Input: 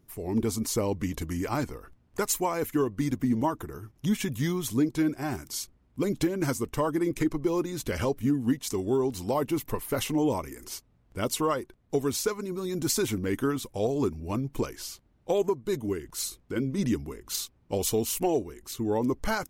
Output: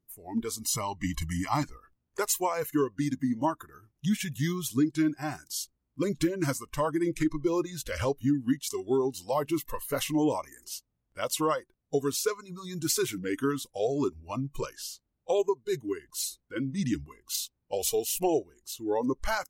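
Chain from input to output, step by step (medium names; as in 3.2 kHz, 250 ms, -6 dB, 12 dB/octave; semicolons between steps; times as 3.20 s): spectral noise reduction 16 dB; 0.59–1.63 s: comb 1 ms, depth 94%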